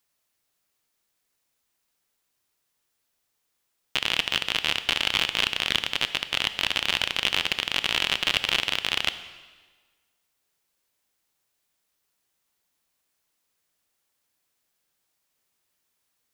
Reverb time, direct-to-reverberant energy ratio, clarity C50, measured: 1.4 s, 11.5 dB, 12.5 dB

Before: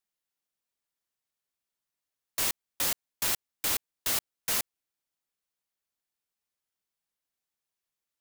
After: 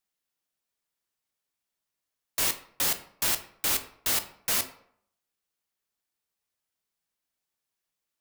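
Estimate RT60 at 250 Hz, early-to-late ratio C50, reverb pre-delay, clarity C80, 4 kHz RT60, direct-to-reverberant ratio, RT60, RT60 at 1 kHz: 0.65 s, 13.0 dB, 11 ms, 16.0 dB, 0.40 s, 8.0 dB, 0.65 s, 0.65 s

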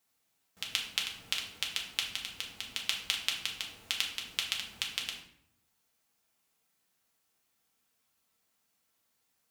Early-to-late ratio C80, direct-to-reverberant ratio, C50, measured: 10.0 dB, -1.5 dB, 6.5 dB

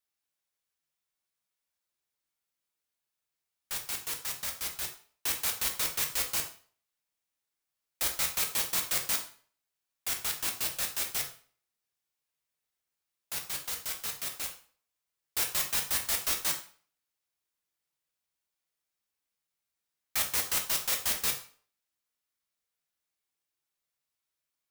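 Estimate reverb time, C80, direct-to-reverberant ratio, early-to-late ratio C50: 0.45 s, 14.0 dB, 2.0 dB, 10.0 dB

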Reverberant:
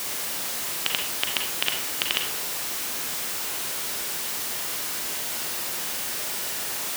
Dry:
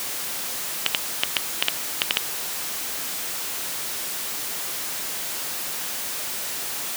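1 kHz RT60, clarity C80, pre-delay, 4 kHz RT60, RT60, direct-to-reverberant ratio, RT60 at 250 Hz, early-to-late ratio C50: 0.60 s, 9.0 dB, 36 ms, 0.35 s, 0.65 s, 2.5 dB, 0.70 s, 5.0 dB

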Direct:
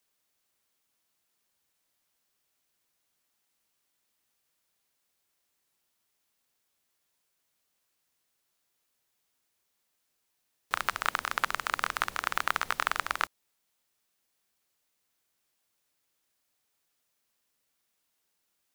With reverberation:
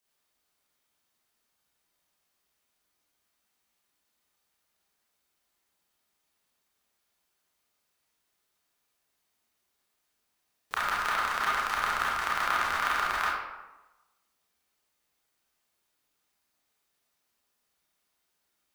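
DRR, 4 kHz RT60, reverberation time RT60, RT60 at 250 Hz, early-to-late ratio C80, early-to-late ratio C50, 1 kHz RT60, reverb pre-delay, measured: -7.0 dB, 0.65 s, 1.1 s, 1.1 s, 2.5 dB, -1.5 dB, 1.1 s, 26 ms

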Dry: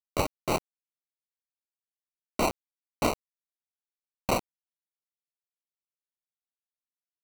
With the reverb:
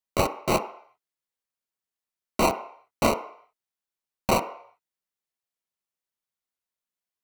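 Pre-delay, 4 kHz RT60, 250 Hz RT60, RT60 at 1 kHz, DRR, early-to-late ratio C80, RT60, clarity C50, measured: 3 ms, 0.60 s, 0.45 s, 0.65 s, 5.0 dB, 15.0 dB, 0.65 s, 12.0 dB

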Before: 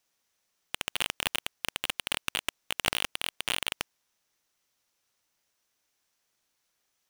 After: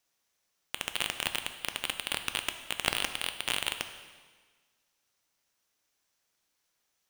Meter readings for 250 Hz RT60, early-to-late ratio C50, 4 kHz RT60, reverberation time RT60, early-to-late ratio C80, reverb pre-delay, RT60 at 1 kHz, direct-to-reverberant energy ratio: 1.5 s, 9.5 dB, 1.4 s, 1.5 s, 11.0 dB, 6 ms, 1.5 s, 7.5 dB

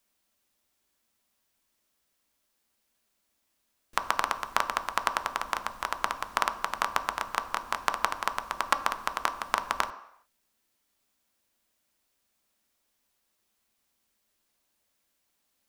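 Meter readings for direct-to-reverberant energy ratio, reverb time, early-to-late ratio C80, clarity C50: 7.0 dB, 0.75 s, 15.5 dB, 13.5 dB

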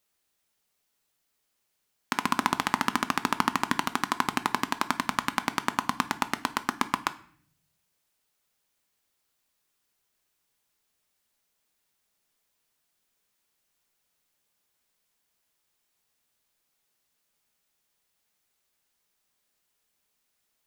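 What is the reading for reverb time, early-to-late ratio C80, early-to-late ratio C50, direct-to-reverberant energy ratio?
0.55 s, 21.0 dB, 17.5 dB, 11.0 dB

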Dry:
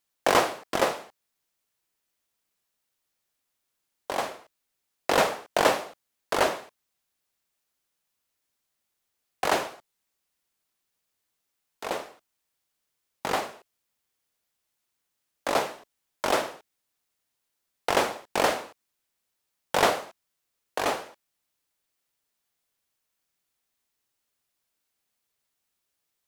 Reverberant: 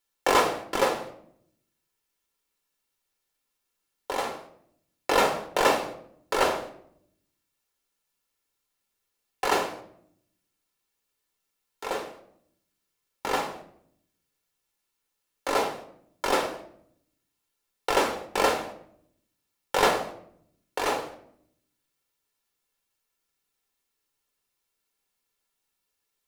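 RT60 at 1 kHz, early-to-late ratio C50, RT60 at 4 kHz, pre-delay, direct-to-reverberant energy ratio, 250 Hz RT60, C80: 0.60 s, 11.0 dB, 0.45 s, 3 ms, 3.5 dB, 1.0 s, 14.0 dB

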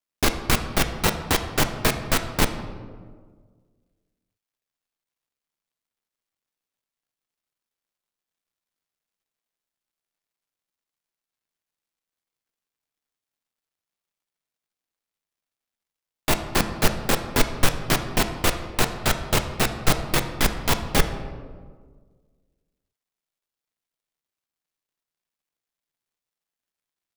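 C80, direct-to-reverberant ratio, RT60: 11.0 dB, 7.0 dB, 1.6 s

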